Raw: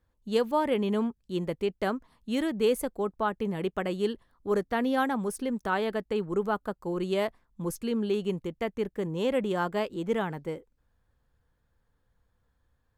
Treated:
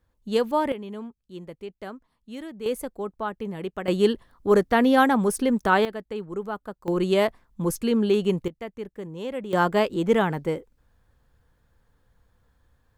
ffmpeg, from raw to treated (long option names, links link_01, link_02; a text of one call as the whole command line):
ffmpeg -i in.wav -af "asetnsamples=nb_out_samples=441:pad=0,asendcmd='0.72 volume volume -8.5dB;2.66 volume volume -1.5dB;3.88 volume volume 8.5dB;5.85 volume volume -3dB;6.88 volume volume 7dB;8.48 volume volume -4.5dB;9.53 volume volume 8dB',volume=3dB" out.wav